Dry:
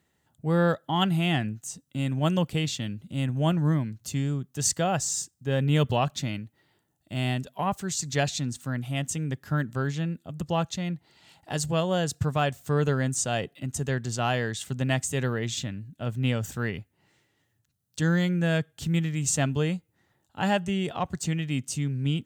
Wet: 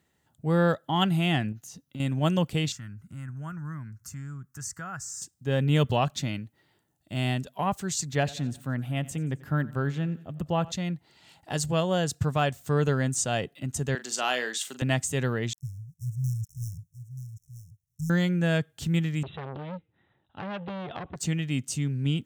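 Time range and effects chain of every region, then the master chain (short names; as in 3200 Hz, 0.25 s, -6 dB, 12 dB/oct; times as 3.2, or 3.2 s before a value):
1.52–2 compressor 3:1, threshold -36 dBFS + bell 8100 Hz -14 dB 0.27 oct
2.72–5.22 EQ curve 100 Hz 0 dB, 560 Hz -16 dB, 800 Hz -9 dB, 1400 Hz +8 dB, 3500 Hz -20 dB, 5400 Hz -2 dB + compressor 2:1, threshold -40 dBFS
8.05–10.72 bell 6200 Hz -10.5 dB 1.5 oct + feedback echo 89 ms, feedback 57%, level -20.5 dB
13.95–14.82 HPF 260 Hz 24 dB/oct + tilt shelf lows -4.5 dB, about 1200 Hz + doubler 40 ms -11 dB
15.53–18.1 switching dead time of 0.2 ms + brick-wall FIR band-stop 160–5300 Hz + echo 0.931 s -11 dB
19.23–21.16 brick-wall FIR low-pass 4000 Hz + compressor 5:1, threshold -26 dBFS + core saturation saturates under 1200 Hz
whole clip: dry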